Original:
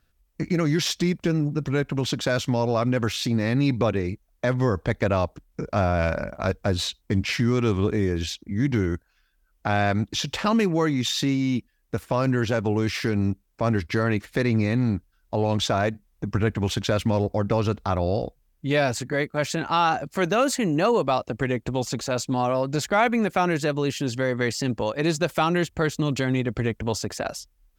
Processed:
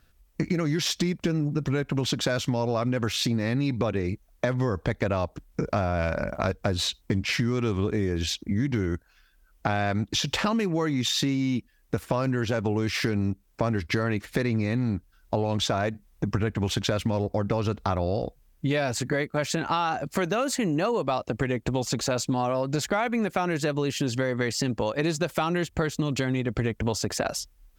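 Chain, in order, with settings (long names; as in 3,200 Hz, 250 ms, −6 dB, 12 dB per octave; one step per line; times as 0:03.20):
downward compressor 6 to 1, threshold −29 dBFS, peak gain reduction 13 dB
level +6 dB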